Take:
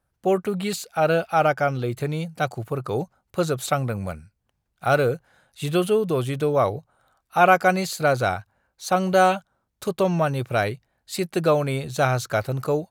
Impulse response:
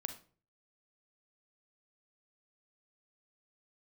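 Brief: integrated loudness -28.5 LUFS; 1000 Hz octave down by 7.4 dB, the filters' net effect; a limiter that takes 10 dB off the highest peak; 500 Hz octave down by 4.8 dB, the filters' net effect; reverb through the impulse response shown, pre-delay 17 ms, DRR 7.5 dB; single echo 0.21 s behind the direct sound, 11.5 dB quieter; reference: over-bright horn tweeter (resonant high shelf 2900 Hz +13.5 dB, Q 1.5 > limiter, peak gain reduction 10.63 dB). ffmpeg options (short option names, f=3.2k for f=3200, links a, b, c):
-filter_complex "[0:a]equalizer=f=500:t=o:g=-3,equalizer=f=1k:t=o:g=-8.5,alimiter=limit=-17.5dB:level=0:latency=1,aecho=1:1:210:0.266,asplit=2[a][b];[1:a]atrim=start_sample=2205,adelay=17[c];[b][c]afir=irnorm=-1:irlink=0,volume=-6.5dB[d];[a][d]amix=inputs=2:normalize=0,highshelf=f=2.9k:t=q:w=1.5:g=13.5,volume=-3dB,alimiter=limit=-17dB:level=0:latency=1"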